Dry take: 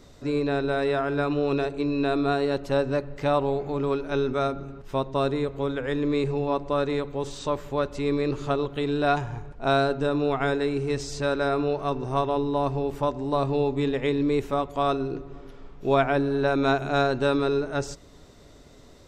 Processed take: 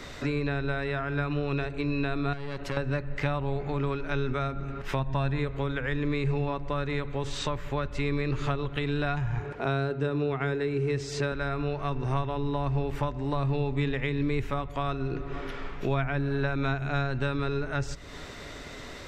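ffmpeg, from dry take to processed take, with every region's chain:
-filter_complex "[0:a]asettb=1/sr,asplit=3[a][b][c];[a]atrim=end=2.334[d];[b]atrim=start=2.33:end=2.77,asetpts=PTS-STARTPTS,afade=t=in:d=0.004:c=qsin,afade=t=out:st=0.436:d=0.004:c=qsin,acompressor=threshold=-25dB:ratio=6:attack=3.2:release=140:knee=1:detection=peak,aeval=exprs='(tanh(28.2*val(0)+0.7)-tanh(0.7))/28.2':c=same[e];[c]atrim=start=2.766[f];[d][e]acrossfade=d=0.004:c1=hsin:c2=qsin[g];[g][f]acrossfade=d=0.004:c1=qsin:c2=hsin,asettb=1/sr,asplit=3[h][i][j];[h]atrim=end=4.994[k];[i]atrim=start=4.99:end=5.39,asetpts=PTS-STARTPTS,afade=t=in:d=0.004:c=qsin,afade=t=out:st=0.396:d=0.004:c=qsin,acompressor=mode=upward:threshold=-28dB:ratio=2.5:attack=3.2:release=140:knee=2.83:detection=peak,highshelf=f=5.8k:g=-6.5,aecho=1:1:1.2:0.47,atrim=end_sample=17640[l];[j]atrim=start=5.386[m];[k][l]acrossfade=d=0.004:c1=hsin:c2=qsin[n];[n][m]acrossfade=d=0.004:c1=qsin:c2=hsin,asettb=1/sr,asplit=3[o][p][q];[o]atrim=end=9.404[r];[p]atrim=start=9.4:end=11.32,asetpts=PTS-STARTPTS,afade=t=in:d=0.004:c=qsin,afade=t=out:st=1.916:d=0.004:c=qsin,highpass=97,equalizer=f=400:w=2.1:g=9[s];[q]atrim=start=11.316[t];[r][s]acrossfade=d=0.004:c1=hsin:c2=qsin[u];[u][t]acrossfade=d=0.004:c1=qsin:c2=hsin,equalizer=f=2k:t=o:w=1.8:g=12.5,acrossover=split=150[v][w];[w]acompressor=threshold=-38dB:ratio=5[x];[v][x]amix=inputs=2:normalize=0,volume=6.5dB"

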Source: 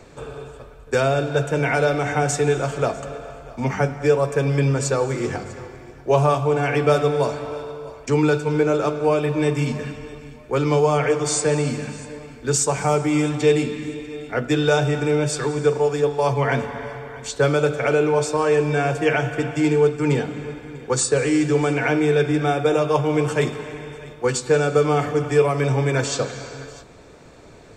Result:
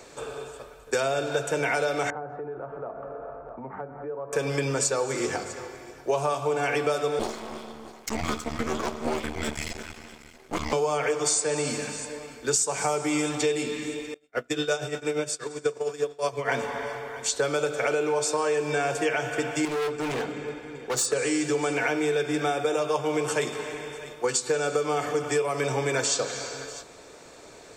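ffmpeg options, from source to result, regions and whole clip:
-filter_complex "[0:a]asettb=1/sr,asplit=3[a][b][c];[a]atrim=end=2.104[d];[b]atrim=start=2.1:end=4.33,asetpts=PTS-STARTPTS,afade=t=in:d=0.004:c=qsin,afade=t=out:st=2.226:d=0.004:c=qsin,lowpass=f=1.3k:w=0.5412,lowpass=f=1.3k:w=1.3066,acompressor=threshold=-32dB:ratio=4:attack=3.2:release=140:knee=1:detection=peak[e];[c]atrim=start=4.326[f];[d][e]acrossfade=d=0.004:c1=hsin:c2=qsin[g];[g][f]acrossfade=d=0.004:c1=qsin:c2=hsin,asettb=1/sr,asplit=3[h][i][j];[h]atrim=end=7.194[k];[i]atrim=start=7.19:end=10.73,asetpts=PTS-STARTPTS,afade=t=in:d=0.004:c=qsin,afade=t=out:st=3.536:d=0.004:c=qsin,highpass=110,afreqshift=-220,aeval=exprs='max(val(0),0)':c=same[l];[j]atrim=start=10.726[m];[k][l]acrossfade=d=0.004:c1=hsin:c2=qsin[n];[n][m]acrossfade=d=0.004:c1=qsin:c2=hsin,asettb=1/sr,asplit=3[o][p][q];[o]atrim=end=14.144[r];[p]atrim=start=14.14:end=16.49,asetpts=PTS-STARTPTS,afade=t=in:d=0.004:c=qsin,afade=t=out:st=2.346:d=0.004:c=qsin,bandreject=f=850:w=5.9,agate=range=-33dB:threshold=-19dB:ratio=3:release=100:detection=peak,tremolo=f=8.5:d=0.76[s];[q]atrim=start=16.486[t];[r][s]acrossfade=d=0.004:c1=hsin:c2=qsin[u];[u][t]acrossfade=d=0.004:c1=qsin:c2=hsin,asettb=1/sr,asplit=3[v][w][x];[v]atrim=end=19.654[y];[w]atrim=start=19.65:end=21.13,asetpts=PTS-STARTPTS,afade=t=in:d=0.004:c=qsin,afade=t=out:st=1.476:d=0.004:c=qsin,lowpass=f=3.5k:p=1,asoftclip=type=hard:threshold=-23dB[z];[x]atrim=start=21.126[aa];[y][z]acrossfade=d=0.004:c1=hsin:c2=qsin[ab];[ab][aa]acrossfade=d=0.004:c1=qsin:c2=hsin,bass=f=250:g=-12,treble=f=4k:g=7,acompressor=threshold=-22dB:ratio=6"

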